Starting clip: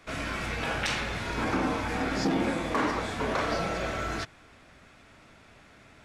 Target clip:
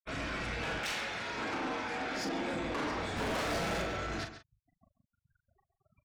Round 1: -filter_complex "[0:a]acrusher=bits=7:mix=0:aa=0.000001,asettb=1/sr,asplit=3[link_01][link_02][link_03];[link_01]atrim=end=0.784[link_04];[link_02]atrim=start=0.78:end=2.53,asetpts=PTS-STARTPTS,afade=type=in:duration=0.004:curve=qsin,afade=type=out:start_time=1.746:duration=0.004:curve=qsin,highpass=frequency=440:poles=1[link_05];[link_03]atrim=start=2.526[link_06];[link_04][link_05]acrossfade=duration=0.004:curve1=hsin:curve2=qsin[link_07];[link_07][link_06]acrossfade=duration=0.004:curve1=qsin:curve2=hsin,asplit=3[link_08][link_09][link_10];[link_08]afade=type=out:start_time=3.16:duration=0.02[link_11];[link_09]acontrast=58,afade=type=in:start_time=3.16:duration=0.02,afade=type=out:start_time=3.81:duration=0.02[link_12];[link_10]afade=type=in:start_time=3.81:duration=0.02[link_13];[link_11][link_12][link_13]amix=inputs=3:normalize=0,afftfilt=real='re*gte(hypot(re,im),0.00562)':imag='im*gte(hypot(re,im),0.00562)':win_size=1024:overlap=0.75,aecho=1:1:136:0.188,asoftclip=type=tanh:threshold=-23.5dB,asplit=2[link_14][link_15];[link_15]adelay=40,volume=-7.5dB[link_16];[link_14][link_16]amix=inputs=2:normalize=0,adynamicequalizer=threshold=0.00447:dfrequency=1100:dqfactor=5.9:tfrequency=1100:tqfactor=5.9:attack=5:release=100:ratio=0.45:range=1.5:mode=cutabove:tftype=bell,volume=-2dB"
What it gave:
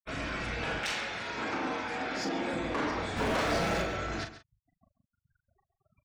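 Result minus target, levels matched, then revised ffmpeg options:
soft clipping: distortion −5 dB
-filter_complex "[0:a]acrusher=bits=7:mix=0:aa=0.000001,asettb=1/sr,asplit=3[link_01][link_02][link_03];[link_01]atrim=end=0.784[link_04];[link_02]atrim=start=0.78:end=2.53,asetpts=PTS-STARTPTS,afade=type=in:duration=0.004:curve=qsin,afade=type=out:start_time=1.746:duration=0.004:curve=qsin,highpass=frequency=440:poles=1[link_05];[link_03]atrim=start=2.526[link_06];[link_04][link_05]acrossfade=duration=0.004:curve1=hsin:curve2=qsin[link_07];[link_07][link_06]acrossfade=duration=0.004:curve1=qsin:curve2=hsin,asplit=3[link_08][link_09][link_10];[link_08]afade=type=out:start_time=3.16:duration=0.02[link_11];[link_09]acontrast=58,afade=type=in:start_time=3.16:duration=0.02,afade=type=out:start_time=3.81:duration=0.02[link_12];[link_10]afade=type=in:start_time=3.81:duration=0.02[link_13];[link_11][link_12][link_13]amix=inputs=3:normalize=0,afftfilt=real='re*gte(hypot(re,im),0.00562)':imag='im*gte(hypot(re,im),0.00562)':win_size=1024:overlap=0.75,aecho=1:1:136:0.188,asoftclip=type=tanh:threshold=-30dB,asplit=2[link_14][link_15];[link_15]adelay=40,volume=-7.5dB[link_16];[link_14][link_16]amix=inputs=2:normalize=0,adynamicequalizer=threshold=0.00447:dfrequency=1100:dqfactor=5.9:tfrequency=1100:tqfactor=5.9:attack=5:release=100:ratio=0.45:range=1.5:mode=cutabove:tftype=bell,volume=-2dB"

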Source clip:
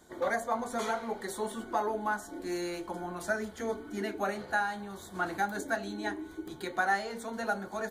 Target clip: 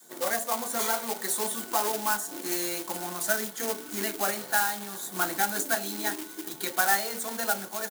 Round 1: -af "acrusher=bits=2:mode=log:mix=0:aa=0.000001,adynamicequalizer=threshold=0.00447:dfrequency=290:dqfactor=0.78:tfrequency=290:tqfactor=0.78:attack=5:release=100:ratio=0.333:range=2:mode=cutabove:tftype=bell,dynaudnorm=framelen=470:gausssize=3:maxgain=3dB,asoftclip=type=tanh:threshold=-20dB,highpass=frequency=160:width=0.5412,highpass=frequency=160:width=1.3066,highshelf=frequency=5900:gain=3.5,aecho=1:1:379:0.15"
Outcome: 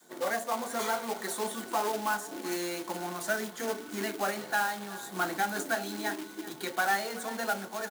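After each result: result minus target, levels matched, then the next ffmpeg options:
echo-to-direct +10.5 dB; soft clipping: distortion +9 dB; 8,000 Hz band −4.5 dB
-af "acrusher=bits=2:mode=log:mix=0:aa=0.000001,adynamicequalizer=threshold=0.00447:dfrequency=290:dqfactor=0.78:tfrequency=290:tqfactor=0.78:attack=5:release=100:ratio=0.333:range=2:mode=cutabove:tftype=bell,dynaudnorm=framelen=470:gausssize=3:maxgain=3dB,asoftclip=type=tanh:threshold=-20dB,highpass=frequency=160:width=0.5412,highpass=frequency=160:width=1.3066,highshelf=frequency=5900:gain=3.5,aecho=1:1:379:0.0447"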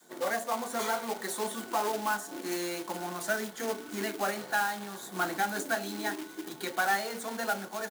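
soft clipping: distortion +9 dB; 8,000 Hz band −4.5 dB
-af "acrusher=bits=2:mode=log:mix=0:aa=0.000001,adynamicequalizer=threshold=0.00447:dfrequency=290:dqfactor=0.78:tfrequency=290:tqfactor=0.78:attack=5:release=100:ratio=0.333:range=2:mode=cutabove:tftype=bell,dynaudnorm=framelen=470:gausssize=3:maxgain=3dB,asoftclip=type=tanh:threshold=-13.5dB,highpass=frequency=160:width=0.5412,highpass=frequency=160:width=1.3066,highshelf=frequency=5900:gain=3.5,aecho=1:1:379:0.0447"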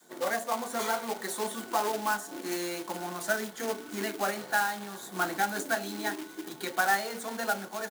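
8,000 Hz band −4.5 dB
-af "acrusher=bits=2:mode=log:mix=0:aa=0.000001,adynamicequalizer=threshold=0.00447:dfrequency=290:dqfactor=0.78:tfrequency=290:tqfactor=0.78:attack=5:release=100:ratio=0.333:range=2:mode=cutabove:tftype=bell,dynaudnorm=framelen=470:gausssize=3:maxgain=3dB,asoftclip=type=tanh:threshold=-13.5dB,highpass=frequency=160:width=0.5412,highpass=frequency=160:width=1.3066,highshelf=frequency=5900:gain=15.5,aecho=1:1:379:0.0447"

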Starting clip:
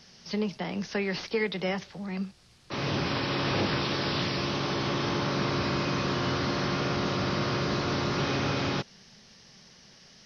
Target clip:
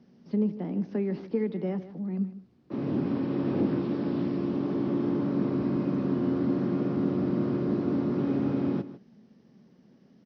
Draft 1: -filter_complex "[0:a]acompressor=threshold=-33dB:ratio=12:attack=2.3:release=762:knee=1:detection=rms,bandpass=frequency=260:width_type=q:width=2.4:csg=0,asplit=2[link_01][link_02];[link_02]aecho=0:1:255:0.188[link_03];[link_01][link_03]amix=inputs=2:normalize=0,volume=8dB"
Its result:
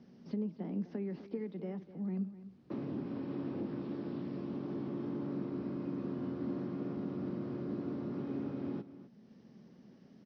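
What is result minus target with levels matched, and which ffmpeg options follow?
echo 102 ms late; downward compressor: peak gain reduction +13 dB
-filter_complex "[0:a]bandpass=frequency=260:width_type=q:width=2.4:csg=0,asplit=2[link_01][link_02];[link_02]aecho=0:1:153:0.188[link_03];[link_01][link_03]amix=inputs=2:normalize=0,volume=8dB"

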